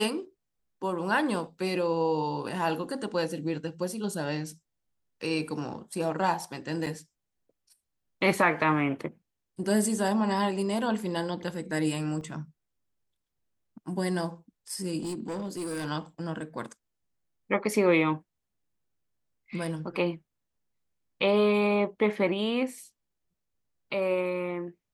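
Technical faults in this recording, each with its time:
6.86–6.87 gap 6.6 ms
12.21 gap 3 ms
15–15.86 clipped -30 dBFS

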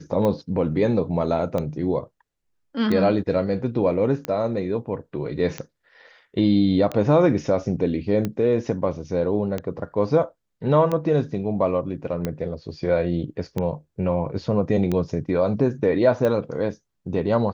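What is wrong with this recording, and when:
tick 45 rpm -13 dBFS

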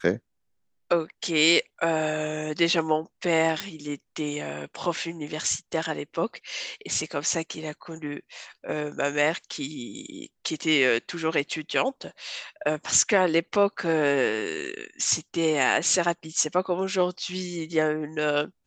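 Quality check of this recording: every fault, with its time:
3.6 pop

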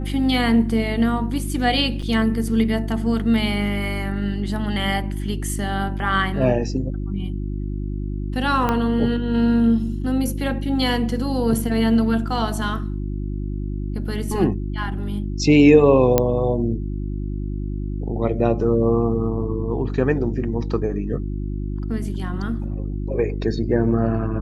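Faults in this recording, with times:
hum 50 Hz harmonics 7 -26 dBFS
2.02–2.03 gap 5.6 ms
8.69 pop -8 dBFS
16.18 pop -3 dBFS

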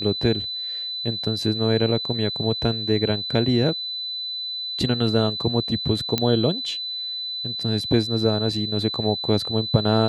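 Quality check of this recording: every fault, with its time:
tone 4000 Hz -27 dBFS
6.18 pop -7 dBFS

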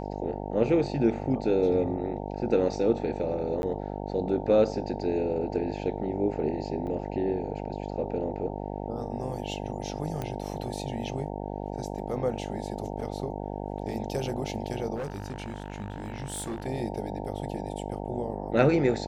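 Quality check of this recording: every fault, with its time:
buzz 50 Hz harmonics 18 -35 dBFS
3.62–3.63 gap 11 ms
6.87 gap 2.1 ms
10.22 pop -19 dBFS
14.95–16.66 clipped -30 dBFS

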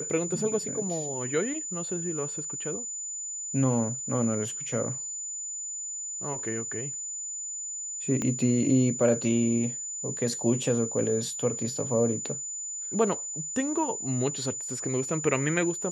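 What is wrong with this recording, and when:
tone 7000 Hz -33 dBFS
8.22 pop -17 dBFS

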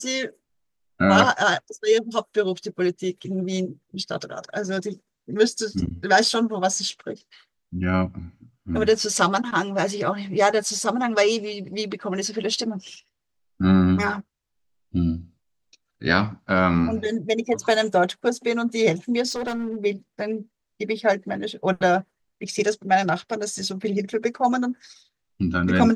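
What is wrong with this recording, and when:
19.29–19.77 clipped -24 dBFS

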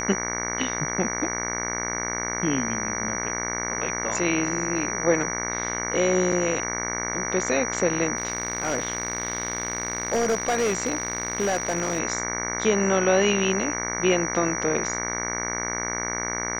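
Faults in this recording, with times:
buzz 60 Hz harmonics 38 -31 dBFS
tone 5800 Hz -30 dBFS
6.32 gap 3.7 ms
8.17–12 clipped -18.5 dBFS

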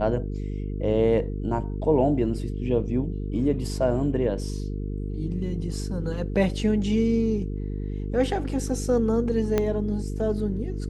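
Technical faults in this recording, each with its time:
buzz 50 Hz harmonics 9 -30 dBFS
9.58 pop -10 dBFS

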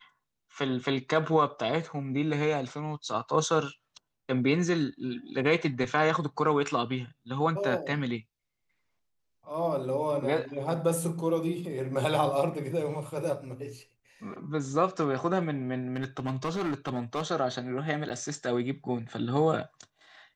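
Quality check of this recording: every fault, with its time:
15.96–17.23 clipped -26 dBFS
18.09–18.1 gap 8.8 ms

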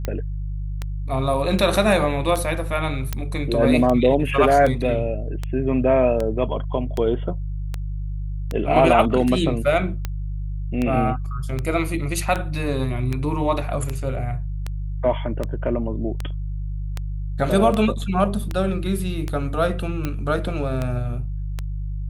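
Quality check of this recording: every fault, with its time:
hum 50 Hz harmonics 3 -27 dBFS
tick 78 rpm -12 dBFS
3.13 pop -11 dBFS

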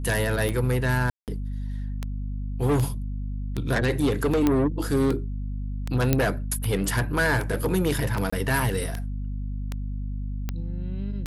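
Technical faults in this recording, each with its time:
hum 50 Hz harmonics 5 -30 dBFS
tick 78 rpm
1.1–1.28 gap 0.178 s
4.47 pop -9 dBFS
6.13 pop -6 dBFS
8.3–8.32 gap 25 ms

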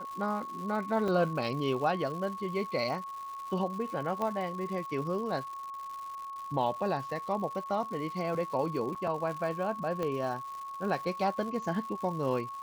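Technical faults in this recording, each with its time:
crackle 260/s -40 dBFS
tone 1100 Hz -38 dBFS
1.08 gap 2.3 ms
4.22 pop -21 dBFS
8.95–8.96 gap 5.9 ms
10.03 pop -21 dBFS

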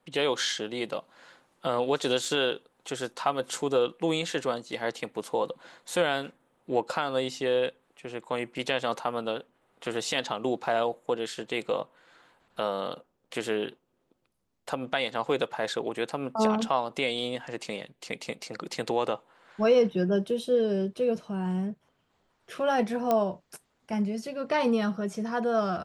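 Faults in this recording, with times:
2.25 gap 2.3 ms
23.11 pop -13 dBFS

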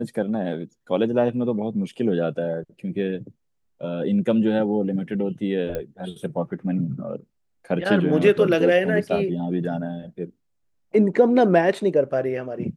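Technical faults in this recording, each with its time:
5.75 pop -16 dBFS

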